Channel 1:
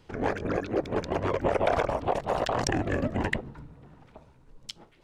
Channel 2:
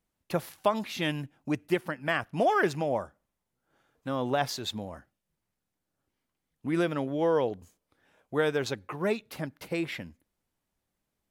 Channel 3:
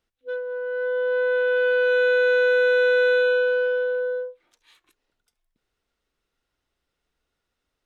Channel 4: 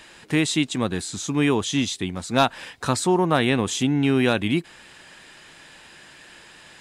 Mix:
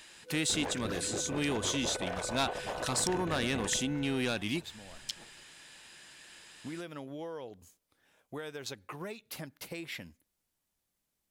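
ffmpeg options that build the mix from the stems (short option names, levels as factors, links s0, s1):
-filter_complex "[0:a]acompressor=threshold=0.0316:ratio=6,adelay=400,volume=0.596[s0];[1:a]acompressor=threshold=0.0224:ratio=10,volume=0.531[s1];[2:a]alimiter=limit=0.075:level=0:latency=1,volume=0.119[s2];[3:a]volume=0.266,asplit=2[s3][s4];[s4]apad=whole_len=498514[s5];[s1][s5]sidechaincompress=threshold=0.0112:ratio=8:attack=8.1:release=746[s6];[s0][s6][s2][s3]amix=inputs=4:normalize=0,asoftclip=type=tanh:threshold=0.0562,highshelf=f=2800:g=10.5"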